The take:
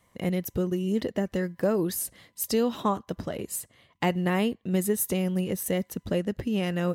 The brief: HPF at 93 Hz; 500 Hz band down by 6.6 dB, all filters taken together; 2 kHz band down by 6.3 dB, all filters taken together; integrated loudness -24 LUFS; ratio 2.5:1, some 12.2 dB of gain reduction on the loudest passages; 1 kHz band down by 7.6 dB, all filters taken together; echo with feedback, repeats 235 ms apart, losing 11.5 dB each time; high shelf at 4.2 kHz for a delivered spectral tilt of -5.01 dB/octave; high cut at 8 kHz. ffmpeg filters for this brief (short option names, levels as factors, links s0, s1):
-af "highpass=93,lowpass=8000,equalizer=f=500:t=o:g=-7,equalizer=f=1000:t=o:g=-6,equalizer=f=2000:t=o:g=-6.5,highshelf=f=4200:g=3.5,acompressor=threshold=0.00708:ratio=2.5,aecho=1:1:235|470|705:0.266|0.0718|0.0194,volume=7.5"